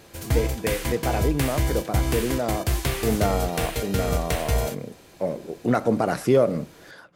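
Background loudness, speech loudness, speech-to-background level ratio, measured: -27.0 LUFS, -26.5 LUFS, 0.5 dB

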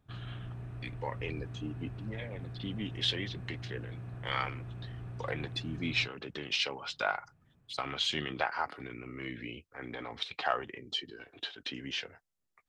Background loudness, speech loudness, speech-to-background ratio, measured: -44.0 LUFS, -36.5 LUFS, 7.5 dB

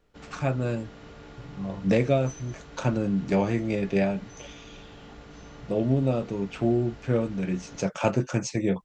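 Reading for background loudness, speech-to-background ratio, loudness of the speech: -46.5 LUFS, 19.5 dB, -27.0 LUFS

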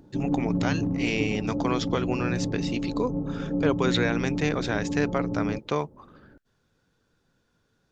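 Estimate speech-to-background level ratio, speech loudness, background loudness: 0.0 dB, -29.5 LUFS, -29.5 LUFS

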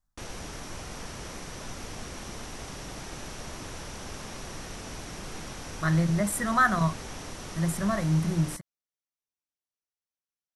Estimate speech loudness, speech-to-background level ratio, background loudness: -26.5 LUFS, 13.5 dB, -40.0 LUFS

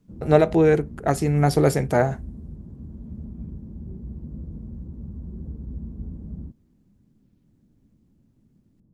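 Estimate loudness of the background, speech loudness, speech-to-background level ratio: -38.0 LUFS, -20.5 LUFS, 17.5 dB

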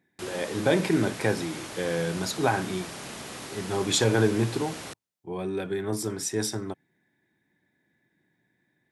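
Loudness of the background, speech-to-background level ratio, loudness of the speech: -38.5 LUFS, 10.5 dB, -28.0 LUFS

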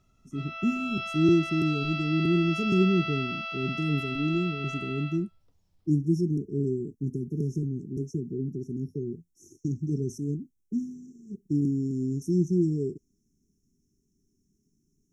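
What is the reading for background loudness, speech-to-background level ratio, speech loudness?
-33.5 LUFS, 4.5 dB, -29.0 LUFS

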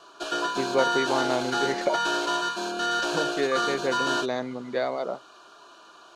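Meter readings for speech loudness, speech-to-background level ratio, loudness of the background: -29.5 LUFS, -2.5 dB, -27.0 LUFS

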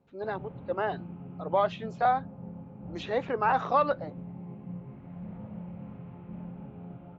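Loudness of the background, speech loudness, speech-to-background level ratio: -43.0 LUFS, -29.5 LUFS, 13.5 dB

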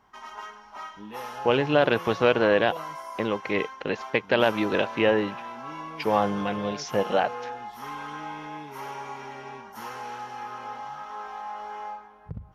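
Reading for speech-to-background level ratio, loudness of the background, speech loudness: 12.5 dB, -37.5 LUFS, -25.0 LUFS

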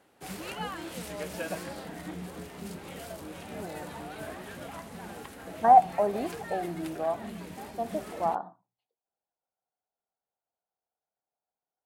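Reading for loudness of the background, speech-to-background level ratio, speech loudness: -40.5 LUFS, 13.5 dB, -27.0 LUFS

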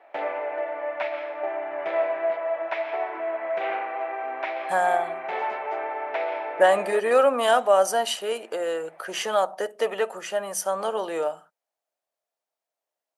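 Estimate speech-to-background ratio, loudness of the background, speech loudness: 5.5 dB, -29.5 LUFS, -24.0 LUFS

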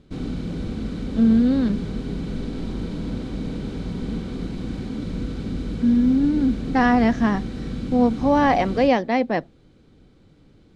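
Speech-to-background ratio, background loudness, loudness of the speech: 10.0 dB, -30.0 LUFS, -20.0 LUFS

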